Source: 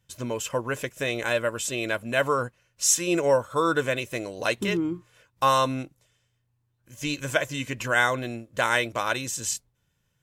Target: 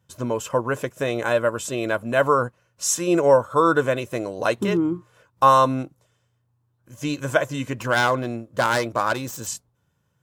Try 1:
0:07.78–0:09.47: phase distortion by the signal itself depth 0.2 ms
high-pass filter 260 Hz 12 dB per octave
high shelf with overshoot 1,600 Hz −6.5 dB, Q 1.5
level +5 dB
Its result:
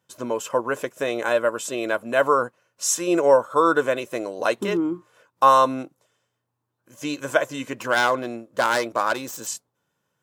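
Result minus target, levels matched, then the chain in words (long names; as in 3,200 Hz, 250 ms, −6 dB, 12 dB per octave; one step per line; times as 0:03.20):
125 Hz band −10.5 dB
0:07.78–0:09.47: phase distortion by the signal itself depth 0.2 ms
high-pass filter 72 Hz 12 dB per octave
high shelf with overshoot 1,600 Hz −6.5 dB, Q 1.5
level +5 dB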